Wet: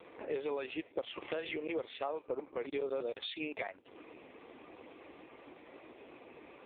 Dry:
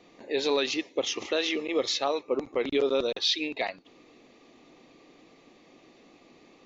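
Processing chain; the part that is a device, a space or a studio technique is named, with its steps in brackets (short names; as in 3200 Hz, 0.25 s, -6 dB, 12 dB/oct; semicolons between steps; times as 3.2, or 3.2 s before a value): voicemail (BPF 350–2700 Hz; compressor 6:1, threshold -43 dBFS, peak gain reduction 18 dB; gain +8.5 dB; AMR-NB 5.15 kbps 8000 Hz)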